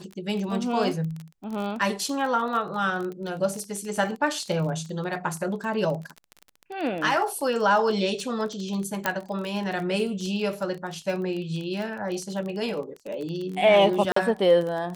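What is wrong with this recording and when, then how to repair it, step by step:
surface crackle 26 per second −30 dBFS
0:09.06: click −8 dBFS
0:14.12–0:14.16: drop-out 44 ms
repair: click removal
repair the gap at 0:14.12, 44 ms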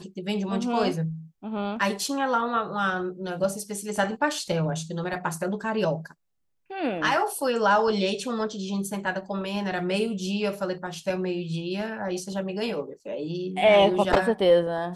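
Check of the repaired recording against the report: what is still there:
none of them is left

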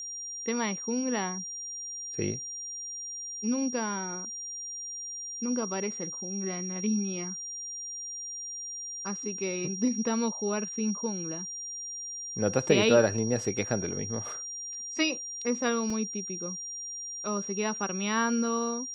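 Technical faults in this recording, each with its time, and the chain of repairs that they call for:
whistle 5,700 Hz −36 dBFS
0:15.90: drop-out 3.6 ms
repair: notch filter 5,700 Hz, Q 30
repair the gap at 0:15.90, 3.6 ms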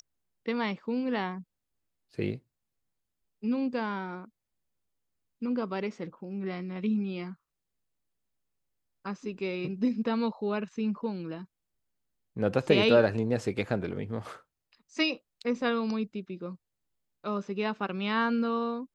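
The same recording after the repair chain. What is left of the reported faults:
none of them is left

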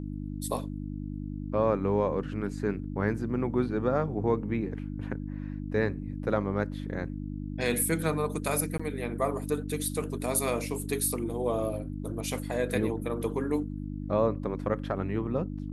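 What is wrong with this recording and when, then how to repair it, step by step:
mains hum 50 Hz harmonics 6 −36 dBFS
0:08.78–0:08.79: drop-out 15 ms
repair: hum removal 50 Hz, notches 6
repair the gap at 0:08.78, 15 ms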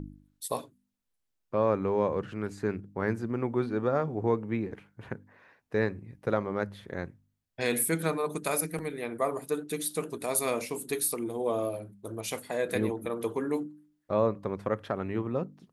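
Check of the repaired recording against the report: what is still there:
none of them is left

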